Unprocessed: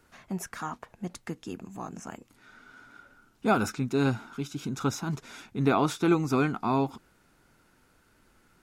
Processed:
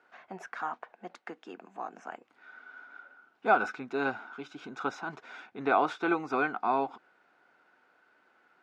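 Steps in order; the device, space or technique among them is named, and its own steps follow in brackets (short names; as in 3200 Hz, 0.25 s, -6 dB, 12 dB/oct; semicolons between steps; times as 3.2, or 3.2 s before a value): 0.92–2.1 HPF 180 Hz 24 dB/oct; tin-can telephone (BPF 460–2600 Hz; small resonant body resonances 740/1500 Hz, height 6 dB, ringing for 25 ms)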